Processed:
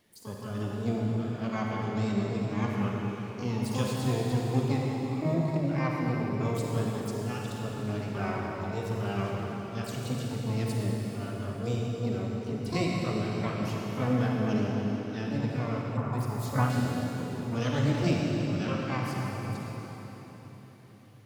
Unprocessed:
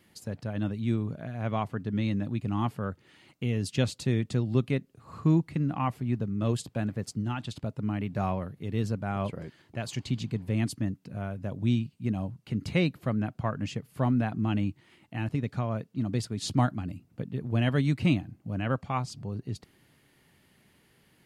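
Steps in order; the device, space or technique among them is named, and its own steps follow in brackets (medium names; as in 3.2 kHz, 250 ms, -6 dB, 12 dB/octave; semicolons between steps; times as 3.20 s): shimmer-style reverb (harmony voices +12 st -4 dB; reverberation RT60 4.3 s, pre-delay 33 ms, DRR -2.5 dB); 15.97–16.70 s: graphic EQ 125/250/500/1000/4000/8000 Hz +4/-4/-4/+9/-8/-4 dB; trim -6.5 dB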